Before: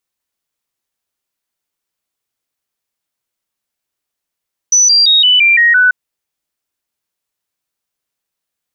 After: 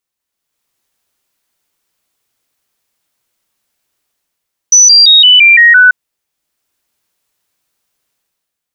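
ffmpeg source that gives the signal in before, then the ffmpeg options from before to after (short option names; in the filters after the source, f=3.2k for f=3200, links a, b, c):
-f lavfi -i "aevalsrc='0.531*clip(min(mod(t,0.17),0.17-mod(t,0.17))/0.005,0,1)*sin(2*PI*5970*pow(2,-floor(t/0.17)/3)*mod(t,0.17))':d=1.19:s=44100"
-af "dynaudnorm=f=120:g=9:m=11dB"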